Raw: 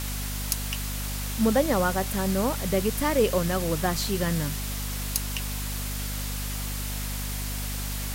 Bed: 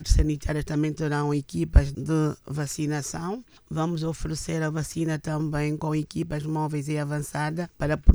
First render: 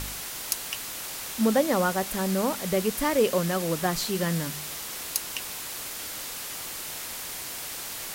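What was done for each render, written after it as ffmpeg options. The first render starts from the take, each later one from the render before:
-af "bandreject=f=50:t=h:w=4,bandreject=f=100:t=h:w=4,bandreject=f=150:t=h:w=4,bandreject=f=200:t=h:w=4,bandreject=f=250:t=h:w=4"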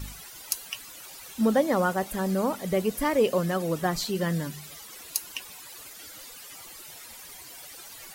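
-af "afftdn=nr=14:nf=-37"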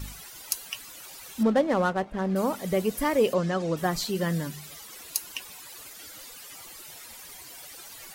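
-filter_complex "[0:a]asettb=1/sr,asplit=3[s0][s1][s2];[s0]atrim=end=1.434[s3];[s1]atrim=start=1.43:end=2.36,asetpts=PTS-STARTPTS,afade=t=in:d=0.004:c=qsin,afade=t=out:st=0.926:d=0.004:c=qsin,adynamicsmooth=sensitivity=5:basefreq=1100[s4];[s2]atrim=start=2.356[s5];[s3][s4]acrossfade=d=0.004:c1=hsin:c2=qsin[s6];[s6][s5]acrossfade=d=0.004:c1=qsin:c2=hsin,asplit=3[s7][s8][s9];[s7]afade=t=out:st=3.33:d=0.02[s10];[s8]lowpass=f=6900:w=0.5412,lowpass=f=6900:w=1.3066,afade=t=in:st=3.33:d=0.02,afade=t=out:st=3.76:d=0.02[s11];[s9]afade=t=in:st=3.76:d=0.02[s12];[s10][s11][s12]amix=inputs=3:normalize=0"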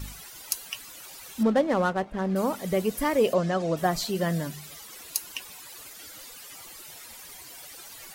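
-filter_complex "[0:a]asettb=1/sr,asplit=3[s0][s1][s2];[s0]atrim=end=3.244[s3];[s1]atrim=start=3.24:end=4.54,asetpts=PTS-STARTPTS,afade=t=in:d=0.004:c=qsin,afade=t=out:st=1.296:d=0.004:c=qsin,equalizer=f=660:w=5.7:g=9[s4];[s2]atrim=start=4.536[s5];[s3][s4]acrossfade=d=0.004:c1=hsin:c2=qsin[s6];[s6][s5]acrossfade=d=0.004:c1=qsin:c2=hsin"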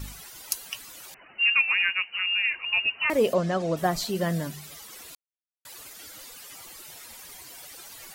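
-filter_complex "[0:a]asettb=1/sr,asplit=3[s0][s1][s2];[s0]atrim=end=1.144[s3];[s1]atrim=start=1.14:end=3.1,asetpts=PTS-STARTPTS,afade=t=in:d=0.004:c=qsin,afade=t=out:st=1.956:d=0.004:c=qsin,lowpass=f=2600:t=q:w=0.5098,lowpass=f=2600:t=q:w=0.6013,lowpass=f=2600:t=q:w=0.9,lowpass=f=2600:t=q:w=2.563,afreqshift=-3000[s4];[s2]atrim=start=3.096[s5];[s3][s4]acrossfade=d=0.004:c1=hsin:c2=qsin[s6];[s6][s5]acrossfade=d=0.004:c1=qsin:c2=hsin,asplit=3[s7][s8][s9];[s7]atrim=end=5.15,asetpts=PTS-STARTPTS,afade=t=out:st=5.146:d=0.004:c=hsin[s10];[s8]atrim=start=5.15:end=5.65,asetpts=PTS-STARTPTS,volume=0[s11];[s9]atrim=start=5.65,asetpts=PTS-STARTPTS,afade=t=in:d=0.004:c=hsin[s12];[s10][s11][s12]concat=n=3:v=0:a=1"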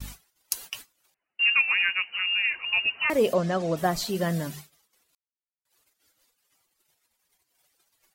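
-af "agate=range=0.0224:threshold=0.01:ratio=16:detection=peak"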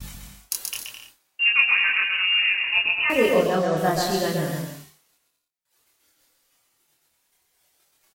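-filter_complex "[0:a]asplit=2[s0][s1];[s1]adelay=26,volume=0.794[s2];[s0][s2]amix=inputs=2:normalize=0,aecho=1:1:130|214.5|269.4|305.1|328.3:0.631|0.398|0.251|0.158|0.1"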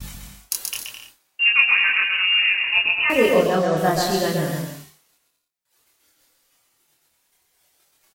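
-af "volume=1.33"

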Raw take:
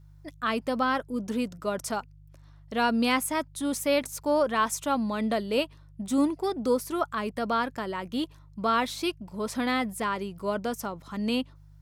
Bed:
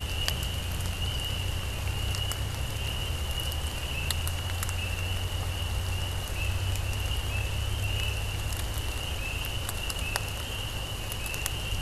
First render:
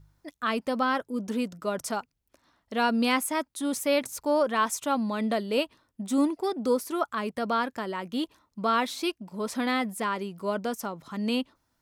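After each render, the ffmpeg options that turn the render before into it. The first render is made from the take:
-af "bandreject=f=50:t=h:w=4,bandreject=f=100:t=h:w=4,bandreject=f=150:t=h:w=4"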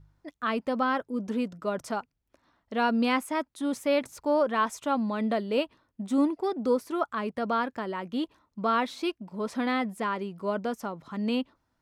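-af "lowpass=f=2600:p=1"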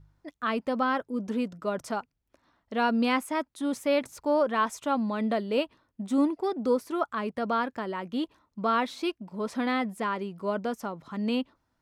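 -af anull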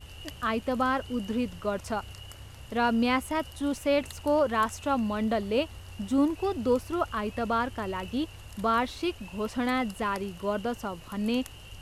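-filter_complex "[1:a]volume=0.2[s0];[0:a][s0]amix=inputs=2:normalize=0"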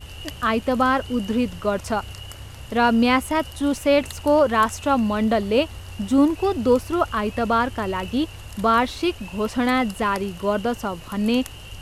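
-af "volume=2.37"

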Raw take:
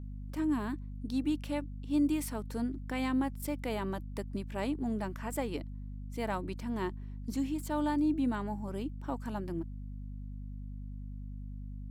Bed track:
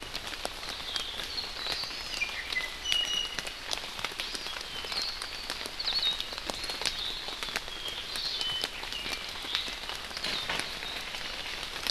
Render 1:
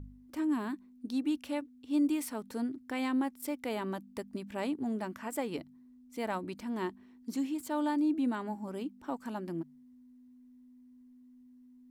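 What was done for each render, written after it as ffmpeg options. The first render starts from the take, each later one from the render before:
-af "bandreject=f=50:t=h:w=4,bandreject=f=100:t=h:w=4,bandreject=f=150:t=h:w=4,bandreject=f=200:t=h:w=4"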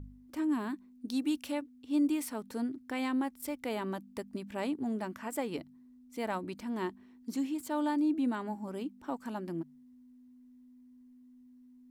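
-filter_complex "[0:a]asettb=1/sr,asplit=3[s0][s1][s2];[s0]atrim=end=1.084[s3];[s1]atrim=start=1.08:end=1.52,asetpts=PTS-STARTPTS,afade=t=in:d=0.004:c=qsin,afade=t=out:st=0.436:d=0.004:c=qsin,highshelf=f=3400:g=7.5[s4];[s2]atrim=start=1.516[s5];[s3][s4]acrossfade=d=0.004:c1=hsin:c2=qsin[s6];[s6][s5]acrossfade=d=0.004:c1=qsin:c2=hsin,asettb=1/sr,asplit=3[s7][s8][s9];[s7]atrim=end=2.904[s10];[s8]atrim=start=2.9:end=3.63,asetpts=PTS-STARTPTS,afade=t=in:d=0.004:c=qsin,afade=t=out:st=0.726:d=0.004:c=qsin,asubboost=boost=11.5:cutoff=120[s11];[s9]atrim=start=3.626[s12];[s10][s11]acrossfade=d=0.004:c1=hsin:c2=qsin[s13];[s13][s12]acrossfade=d=0.004:c1=qsin:c2=hsin"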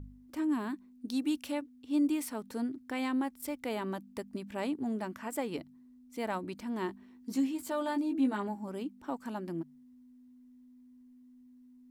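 -filter_complex "[0:a]asettb=1/sr,asplit=3[s0][s1][s2];[s0]atrim=end=6.874[s3];[s1]atrim=start=6.87:end=8.48,asetpts=PTS-STARTPTS,afade=t=in:d=0.004:c=qsin,afade=t=out:st=1.606:d=0.004:c=qsin,asplit=2[s4][s5];[s5]adelay=15,volume=0.631[s6];[s4][s6]amix=inputs=2:normalize=0,atrim=end_sample=71001[s7];[s2]atrim=start=8.476[s8];[s3][s7]acrossfade=d=0.004:c1=hsin:c2=qsin[s9];[s9][s8]acrossfade=d=0.004:c1=qsin:c2=hsin"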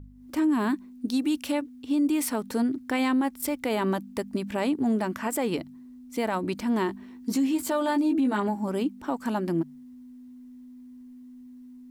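-af "alimiter=level_in=1.78:limit=0.0631:level=0:latency=1:release=87,volume=0.562,dynaudnorm=f=140:g=3:m=3.55"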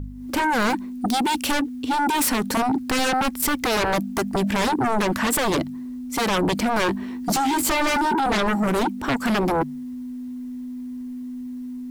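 -af "aeval=exprs='0.133*sin(PI/2*3.16*val(0)/0.133)':c=same"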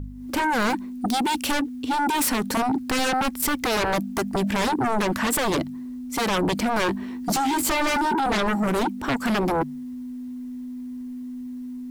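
-af "volume=0.841"

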